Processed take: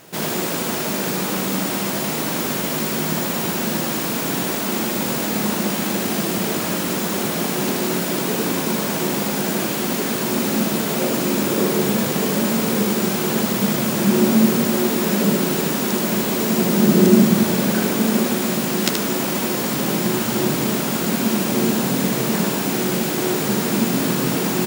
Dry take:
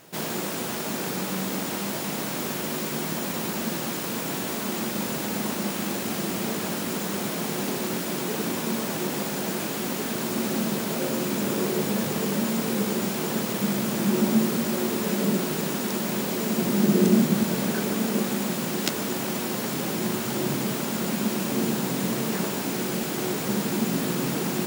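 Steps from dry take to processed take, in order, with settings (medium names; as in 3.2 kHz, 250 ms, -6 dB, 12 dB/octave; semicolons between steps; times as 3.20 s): delay 77 ms -5 dB; trim +5.5 dB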